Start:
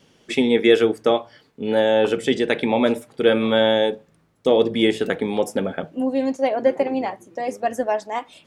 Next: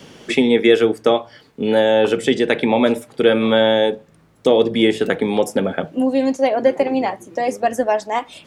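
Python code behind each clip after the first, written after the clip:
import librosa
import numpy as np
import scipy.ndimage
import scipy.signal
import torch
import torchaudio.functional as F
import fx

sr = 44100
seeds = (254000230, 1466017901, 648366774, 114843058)

y = fx.band_squash(x, sr, depth_pct=40)
y = F.gain(torch.from_numpy(y), 3.0).numpy()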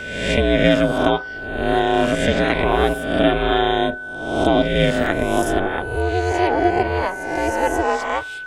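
y = fx.spec_swells(x, sr, rise_s=0.92)
y = y * np.sin(2.0 * np.pi * 180.0 * np.arange(len(y)) / sr)
y = y + 10.0 ** (-28.0 / 20.0) * np.sin(2.0 * np.pi * 1500.0 * np.arange(len(y)) / sr)
y = F.gain(torch.from_numpy(y), -1.0).numpy()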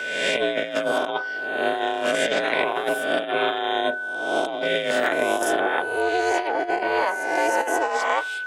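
y = scipy.signal.sosfilt(scipy.signal.butter(2, 450.0, 'highpass', fs=sr, output='sos'), x)
y = fx.over_compress(y, sr, threshold_db=-22.0, ratio=-0.5)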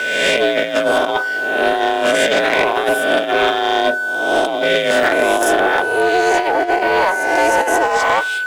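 y = fx.leveller(x, sr, passes=2)
y = F.gain(torch.from_numpy(y), 1.5).numpy()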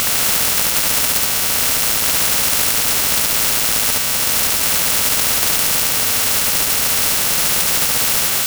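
y = fx.bit_reversed(x, sr, seeds[0], block=128)
y = y + 10.0 ** (-3.5 / 20.0) * np.pad(y, (int(72 * sr / 1000.0), 0))[:len(y)]
y = fx.spectral_comp(y, sr, ratio=10.0)
y = F.gain(torch.from_numpy(y), 1.0).numpy()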